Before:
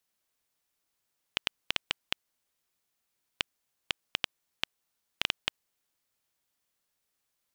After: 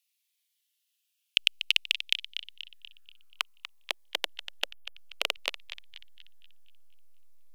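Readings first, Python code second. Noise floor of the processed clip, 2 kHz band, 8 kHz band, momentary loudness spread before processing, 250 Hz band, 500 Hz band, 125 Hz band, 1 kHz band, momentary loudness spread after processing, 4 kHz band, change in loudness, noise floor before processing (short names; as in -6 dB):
-79 dBFS, +4.5 dB, +4.0 dB, 5 LU, -5.0 dB, +4.0 dB, n/a, +1.0 dB, 20 LU, +6.0 dB, +5.5 dB, -81 dBFS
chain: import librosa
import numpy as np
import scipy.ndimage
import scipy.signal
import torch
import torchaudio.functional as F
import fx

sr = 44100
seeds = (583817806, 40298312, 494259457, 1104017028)

p1 = fx.filter_sweep_highpass(x, sr, from_hz=2800.0, to_hz=540.0, start_s=2.42, end_s=4.05, q=2.7)
p2 = fx.peak_eq(p1, sr, hz=12000.0, db=5.5, octaves=0.41)
p3 = fx.backlash(p2, sr, play_db=-22.0)
p4 = p2 + (p3 * 10.0 ** (-9.0 / 20.0))
p5 = fx.spec_erase(p4, sr, start_s=4.71, length_s=0.25, low_hz=850.0, high_hz=9600.0)
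p6 = fx.echo_banded(p5, sr, ms=241, feedback_pct=47, hz=3000.0, wet_db=-10)
y = fx.notch_cascade(p6, sr, direction='falling', hz=0.55)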